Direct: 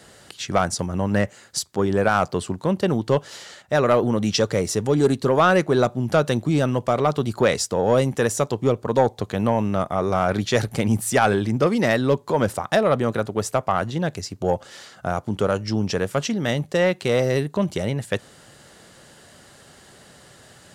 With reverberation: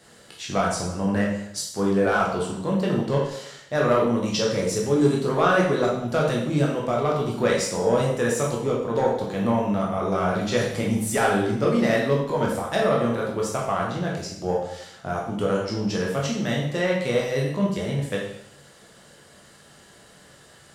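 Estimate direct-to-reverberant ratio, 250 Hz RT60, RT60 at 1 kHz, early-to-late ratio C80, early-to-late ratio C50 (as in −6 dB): −3.5 dB, 0.75 s, 0.75 s, 6.5 dB, 2.5 dB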